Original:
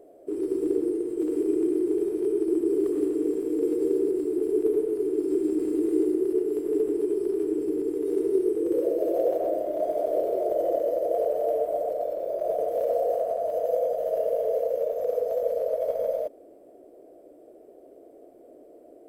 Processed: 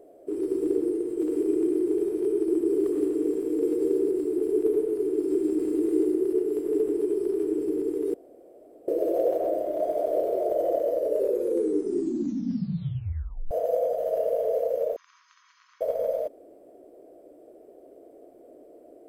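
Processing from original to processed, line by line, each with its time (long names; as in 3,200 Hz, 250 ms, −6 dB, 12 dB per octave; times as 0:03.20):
0:08.14–0:08.88: fill with room tone
0:10.90: tape stop 2.61 s
0:14.96–0:15.81: linear-phase brick-wall band-pass 960–7,300 Hz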